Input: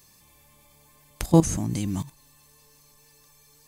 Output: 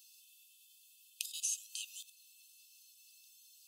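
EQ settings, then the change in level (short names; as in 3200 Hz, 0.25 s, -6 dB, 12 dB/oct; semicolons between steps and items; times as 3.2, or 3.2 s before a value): brick-wall FIR high-pass 2500 Hz; high shelf 3800 Hz -7.5 dB; bell 5600 Hz -2.5 dB 1.8 oct; +4.0 dB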